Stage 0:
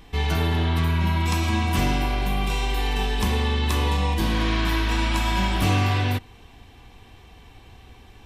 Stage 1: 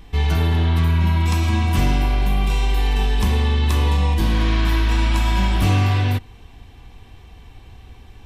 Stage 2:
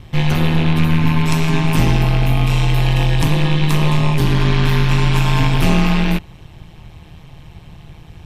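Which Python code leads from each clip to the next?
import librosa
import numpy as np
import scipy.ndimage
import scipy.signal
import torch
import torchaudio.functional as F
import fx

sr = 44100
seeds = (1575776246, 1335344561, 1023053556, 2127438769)

y1 = fx.low_shelf(x, sr, hz=130.0, db=8.0)
y2 = fx.rattle_buzz(y1, sr, strikes_db=-27.0, level_db=-20.0)
y2 = y2 * np.sin(2.0 * np.pi * 78.0 * np.arange(len(y2)) / sr)
y2 = F.gain(torch.from_numpy(y2), 6.5).numpy()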